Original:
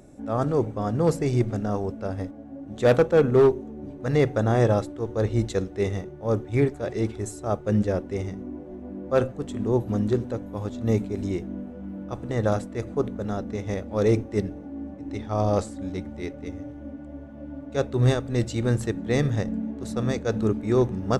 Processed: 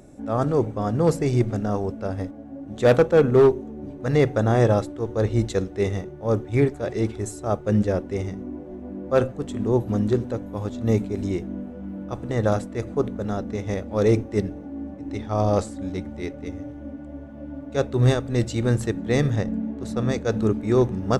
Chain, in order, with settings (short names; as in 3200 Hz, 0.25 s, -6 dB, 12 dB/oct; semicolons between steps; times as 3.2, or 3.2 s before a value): 19.36–20.12 high shelf 5700 Hz -5.5 dB; gain +2 dB